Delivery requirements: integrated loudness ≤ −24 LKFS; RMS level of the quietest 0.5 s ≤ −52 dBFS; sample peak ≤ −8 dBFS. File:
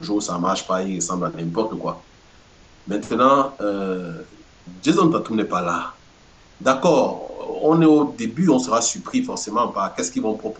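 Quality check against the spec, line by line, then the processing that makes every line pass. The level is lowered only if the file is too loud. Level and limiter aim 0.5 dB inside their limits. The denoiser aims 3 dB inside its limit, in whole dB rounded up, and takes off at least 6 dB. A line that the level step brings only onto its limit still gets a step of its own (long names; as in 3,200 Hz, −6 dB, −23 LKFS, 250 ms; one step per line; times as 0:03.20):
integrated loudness −20.5 LKFS: out of spec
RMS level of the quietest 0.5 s −50 dBFS: out of spec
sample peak −3.5 dBFS: out of spec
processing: level −4 dB
brickwall limiter −8.5 dBFS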